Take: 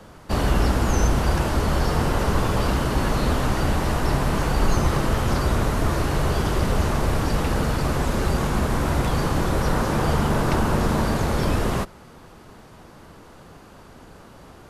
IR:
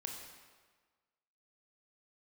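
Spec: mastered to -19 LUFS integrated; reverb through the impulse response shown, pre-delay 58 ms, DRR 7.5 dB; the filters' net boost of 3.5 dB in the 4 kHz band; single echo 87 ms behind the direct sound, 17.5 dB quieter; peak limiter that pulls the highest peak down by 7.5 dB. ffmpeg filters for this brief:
-filter_complex "[0:a]equalizer=f=4000:t=o:g=4.5,alimiter=limit=0.168:level=0:latency=1,aecho=1:1:87:0.133,asplit=2[s0][s1];[1:a]atrim=start_sample=2205,adelay=58[s2];[s1][s2]afir=irnorm=-1:irlink=0,volume=0.501[s3];[s0][s3]amix=inputs=2:normalize=0,volume=2"

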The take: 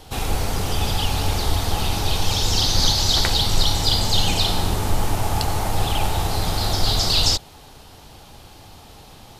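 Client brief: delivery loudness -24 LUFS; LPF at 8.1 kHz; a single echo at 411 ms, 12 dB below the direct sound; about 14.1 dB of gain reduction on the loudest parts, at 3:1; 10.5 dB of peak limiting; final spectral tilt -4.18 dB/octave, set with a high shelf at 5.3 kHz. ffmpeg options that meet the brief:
-af "lowpass=8100,highshelf=f=5300:g=-6.5,acompressor=threshold=0.0224:ratio=3,alimiter=level_in=1.26:limit=0.0631:level=0:latency=1,volume=0.794,aecho=1:1:411:0.251,volume=4.73"

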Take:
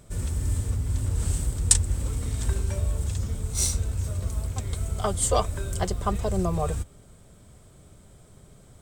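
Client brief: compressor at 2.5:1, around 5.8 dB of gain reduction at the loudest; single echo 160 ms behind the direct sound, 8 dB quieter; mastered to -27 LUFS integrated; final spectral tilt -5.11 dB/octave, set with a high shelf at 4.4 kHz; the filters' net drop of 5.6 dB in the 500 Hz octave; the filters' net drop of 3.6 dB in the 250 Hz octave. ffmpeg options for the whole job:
-af "equalizer=f=250:t=o:g=-4.5,equalizer=f=500:t=o:g=-6,highshelf=f=4400:g=-8,acompressor=threshold=0.0447:ratio=2.5,aecho=1:1:160:0.398,volume=1.78"

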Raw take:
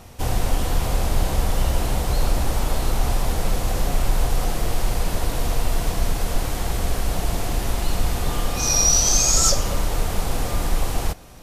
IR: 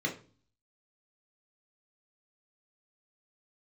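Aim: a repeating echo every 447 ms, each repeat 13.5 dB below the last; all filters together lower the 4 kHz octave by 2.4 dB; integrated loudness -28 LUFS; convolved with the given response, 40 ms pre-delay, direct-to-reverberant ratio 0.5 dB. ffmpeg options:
-filter_complex "[0:a]equalizer=f=4000:t=o:g=-3.5,aecho=1:1:447|894:0.211|0.0444,asplit=2[s0][s1];[1:a]atrim=start_sample=2205,adelay=40[s2];[s1][s2]afir=irnorm=-1:irlink=0,volume=0.473[s3];[s0][s3]amix=inputs=2:normalize=0,volume=0.473"

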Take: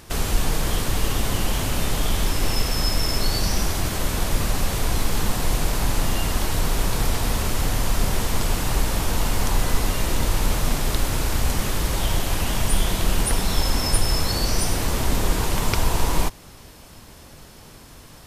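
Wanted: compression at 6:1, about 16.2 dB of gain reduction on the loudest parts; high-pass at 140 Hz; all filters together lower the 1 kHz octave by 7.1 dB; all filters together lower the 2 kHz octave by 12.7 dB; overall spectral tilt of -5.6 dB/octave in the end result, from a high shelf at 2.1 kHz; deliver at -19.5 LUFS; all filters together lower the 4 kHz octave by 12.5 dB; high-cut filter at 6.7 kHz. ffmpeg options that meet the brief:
-af "highpass=140,lowpass=6700,equalizer=f=1000:t=o:g=-5,equalizer=f=2000:t=o:g=-9,highshelf=f=2100:g=-8.5,equalizer=f=4000:t=o:g=-4,acompressor=threshold=0.00708:ratio=6,volume=21.1"

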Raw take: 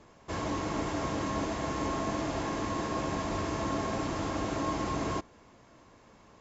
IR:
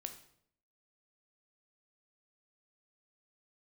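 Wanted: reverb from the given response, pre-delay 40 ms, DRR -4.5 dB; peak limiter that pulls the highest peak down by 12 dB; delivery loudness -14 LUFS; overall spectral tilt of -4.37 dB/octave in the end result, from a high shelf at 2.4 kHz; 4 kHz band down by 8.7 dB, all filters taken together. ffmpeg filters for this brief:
-filter_complex "[0:a]highshelf=f=2400:g=-3.5,equalizer=f=4000:t=o:g=-8.5,alimiter=level_in=2.37:limit=0.0631:level=0:latency=1,volume=0.422,asplit=2[s0][s1];[1:a]atrim=start_sample=2205,adelay=40[s2];[s1][s2]afir=irnorm=-1:irlink=0,volume=2.37[s3];[s0][s3]amix=inputs=2:normalize=0,volume=10"

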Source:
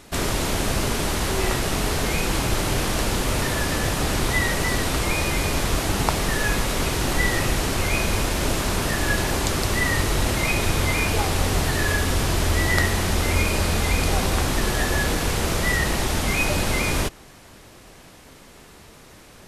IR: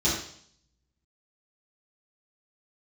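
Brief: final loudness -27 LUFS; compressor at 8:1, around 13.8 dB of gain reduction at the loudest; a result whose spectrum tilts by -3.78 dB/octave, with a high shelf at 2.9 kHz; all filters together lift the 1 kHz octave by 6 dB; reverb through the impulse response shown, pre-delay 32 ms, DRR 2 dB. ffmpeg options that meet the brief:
-filter_complex "[0:a]equalizer=f=1000:t=o:g=6.5,highshelf=f=2900:g=8,acompressor=threshold=0.0501:ratio=8,asplit=2[s0][s1];[1:a]atrim=start_sample=2205,adelay=32[s2];[s1][s2]afir=irnorm=-1:irlink=0,volume=0.2[s3];[s0][s3]amix=inputs=2:normalize=0,volume=0.841"

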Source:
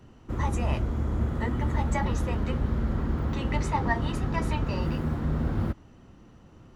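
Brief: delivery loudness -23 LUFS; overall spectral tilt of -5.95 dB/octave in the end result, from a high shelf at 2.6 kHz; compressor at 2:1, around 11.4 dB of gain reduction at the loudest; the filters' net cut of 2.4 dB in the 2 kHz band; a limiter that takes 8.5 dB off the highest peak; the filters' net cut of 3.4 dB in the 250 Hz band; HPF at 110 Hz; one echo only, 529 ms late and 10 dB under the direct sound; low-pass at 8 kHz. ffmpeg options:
-af "highpass=110,lowpass=8000,equalizer=f=250:t=o:g=-4,equalizer=f=2000:t=o:g=-5.5,highshelf=f=2600:g=7,acompressor=threshold=0.00631:ratio=2,alimiter=level_in=2.99:limit=0.0631:level=0:latency=1,volume=0.335,aecho=1:1:529:0.316,volume=10"

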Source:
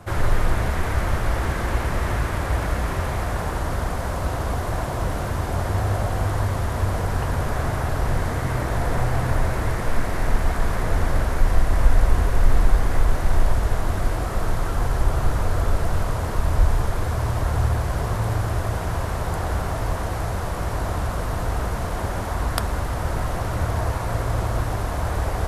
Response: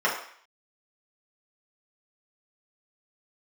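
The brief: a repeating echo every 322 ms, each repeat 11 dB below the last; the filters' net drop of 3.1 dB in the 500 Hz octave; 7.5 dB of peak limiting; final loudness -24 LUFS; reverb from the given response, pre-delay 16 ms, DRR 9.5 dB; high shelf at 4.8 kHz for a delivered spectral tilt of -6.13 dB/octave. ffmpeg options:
-filter_complex "[0:a]equalizer=f=500:t=o:g=-4,highshelf=f=4800:g=-3,alimiter=limit=0.299:level=0:latency=1,aecho=1:1:322|644|966:0.282|0.0789|0.0221,asplit=2[s0][s1];[1:a]atrim=start_sample=2205,adelay=16[s2];[s1][s2]afir=irnorm=-1:irlink=0,volume=0.0596[s3];[s0][s3]amix=inputs=2:normalize=0,volume=1.19"

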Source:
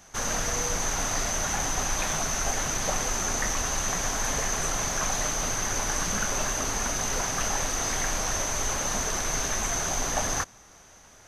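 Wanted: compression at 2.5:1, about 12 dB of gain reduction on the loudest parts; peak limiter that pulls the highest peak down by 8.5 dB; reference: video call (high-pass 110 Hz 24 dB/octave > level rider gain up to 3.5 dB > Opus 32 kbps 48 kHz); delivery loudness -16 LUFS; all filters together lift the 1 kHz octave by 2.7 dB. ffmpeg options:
-af "equalizer=f=1000:t=o:g=3.5,acompressor=threshold=0.00891:ratio=2.5,alimiter=level_in=2.82:limit=0.0631:level=0:latency=1,volume=0.355,highpass=f=110:w=0.5412,highpass=f=110:w=1.3066,dynaudnorm=m=1.5,volume=20" -ar 48000 -c:a libopus -b:a 32k

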